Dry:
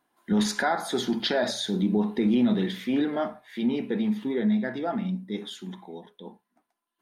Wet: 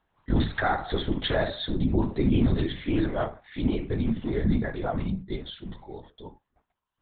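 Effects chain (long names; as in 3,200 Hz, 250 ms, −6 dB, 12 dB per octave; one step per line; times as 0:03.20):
linear-prediction vocoder at 8 kHz whisper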